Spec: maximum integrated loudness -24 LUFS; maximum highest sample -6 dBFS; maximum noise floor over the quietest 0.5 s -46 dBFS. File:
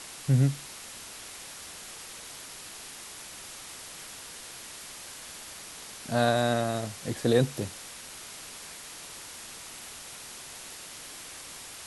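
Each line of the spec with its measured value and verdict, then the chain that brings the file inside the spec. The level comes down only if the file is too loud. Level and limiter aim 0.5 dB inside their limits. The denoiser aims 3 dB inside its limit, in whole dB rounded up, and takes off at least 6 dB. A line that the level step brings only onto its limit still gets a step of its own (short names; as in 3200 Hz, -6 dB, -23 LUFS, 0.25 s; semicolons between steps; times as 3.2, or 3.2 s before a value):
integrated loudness -33.5 LUFS: OK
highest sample -10.0 dBFS: OK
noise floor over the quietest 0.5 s -44 dBFS: fail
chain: denoiser 6 dB, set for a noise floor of -44 dBFS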